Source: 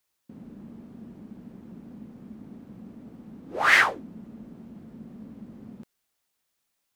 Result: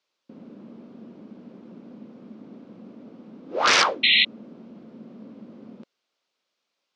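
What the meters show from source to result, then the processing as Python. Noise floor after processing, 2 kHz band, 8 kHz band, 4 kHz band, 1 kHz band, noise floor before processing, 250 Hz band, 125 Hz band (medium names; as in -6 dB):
-81 dBFS, -0.5 dB, +9.5 dB, +13.5 dB, +3.0 dB, -78 dBFS, +1.0 dB, -3.0 dB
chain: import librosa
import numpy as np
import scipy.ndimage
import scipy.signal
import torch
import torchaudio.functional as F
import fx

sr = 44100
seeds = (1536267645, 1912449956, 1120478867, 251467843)

y = (np.mod(10.0 ** (13.0 / 20.0) * x + 1.0, 2.0) - 1.0) / 10.0 ** (13.0 / 20.0)
y = fx.cabinet(y, sr, low_hz=260.0, low_slope=12, high_hz=5300.0, hz=(540.0, 810.0, 1800.0), db=(4, -4, -6))
y = fx.spec_paint(y, sr, seeds[0], shape='noise', start_s=4.03, length_s=0.22, low_hz=1900.0, high_hz=4200.0, level_db=-22.0)
y = F.gain(torch.from_numpy(y), 4.5).numpy()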